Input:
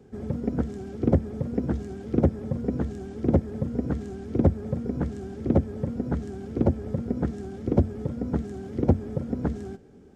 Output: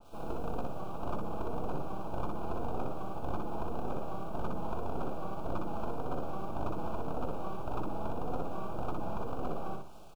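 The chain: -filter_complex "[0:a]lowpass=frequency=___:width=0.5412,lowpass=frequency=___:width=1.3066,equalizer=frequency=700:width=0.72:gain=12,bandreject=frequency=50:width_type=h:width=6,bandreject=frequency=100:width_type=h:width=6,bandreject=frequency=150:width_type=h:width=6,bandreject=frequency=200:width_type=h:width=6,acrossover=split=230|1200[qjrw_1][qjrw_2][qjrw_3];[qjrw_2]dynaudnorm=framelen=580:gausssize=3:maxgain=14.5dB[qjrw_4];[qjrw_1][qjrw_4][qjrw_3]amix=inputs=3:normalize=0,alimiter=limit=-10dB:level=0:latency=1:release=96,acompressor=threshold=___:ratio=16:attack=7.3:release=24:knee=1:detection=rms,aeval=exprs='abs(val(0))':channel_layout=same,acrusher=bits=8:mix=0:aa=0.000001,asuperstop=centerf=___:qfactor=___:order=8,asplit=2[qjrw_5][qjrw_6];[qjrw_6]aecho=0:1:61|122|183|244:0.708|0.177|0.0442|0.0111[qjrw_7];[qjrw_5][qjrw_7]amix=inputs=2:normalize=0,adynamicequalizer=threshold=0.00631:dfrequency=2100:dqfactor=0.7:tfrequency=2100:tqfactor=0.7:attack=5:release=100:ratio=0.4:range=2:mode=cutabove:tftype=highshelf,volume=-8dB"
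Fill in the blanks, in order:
4100, 4100, -23dB, 1900, 2.3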